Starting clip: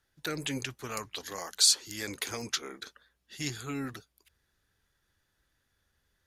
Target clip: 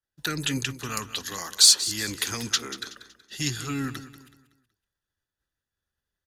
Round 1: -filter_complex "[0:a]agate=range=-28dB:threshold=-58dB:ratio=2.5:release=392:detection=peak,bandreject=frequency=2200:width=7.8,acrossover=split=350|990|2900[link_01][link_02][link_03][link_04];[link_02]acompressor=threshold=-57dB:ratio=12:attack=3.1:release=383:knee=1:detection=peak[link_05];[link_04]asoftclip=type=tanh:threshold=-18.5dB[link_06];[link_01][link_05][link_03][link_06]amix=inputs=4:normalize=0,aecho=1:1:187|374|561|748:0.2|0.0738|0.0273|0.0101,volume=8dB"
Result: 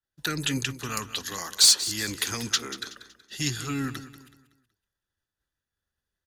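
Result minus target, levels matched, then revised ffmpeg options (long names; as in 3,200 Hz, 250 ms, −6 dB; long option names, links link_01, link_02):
soft clipping: distortion +9 dB
-filter_complex "[0:a]agate=range=-28dB:threshold=-58dB:ratio=2.5:release=392:detection=peak,bandreject=frequency=2200:width=7.8,acrossover=split=350|990|2900[link_01][link_02][link_03][link_04];[link_02]acompressor=threshold=-57dB:ratio=12:attack=3.1:release=383:knee=1:detection=peak[link_05];[link_04]asoftclip=type=tanh:threshold=-12dB[link_06];[link_01][link_05][link_03][link_06]amix=inputs=4:normalize=0,aecho=1:1:187|374|561|748:0.2|0.0738|0.0273|0.0101,volume=8dB"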